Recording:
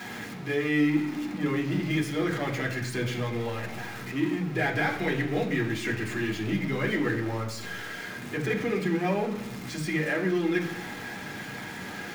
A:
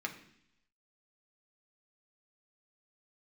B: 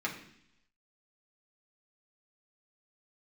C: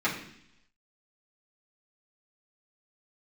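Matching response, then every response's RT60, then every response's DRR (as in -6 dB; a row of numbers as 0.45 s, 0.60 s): B; 0.70 s, 0.70 s, 0.70 s; 1.5 dB, -3.5 dB, -9.0 dB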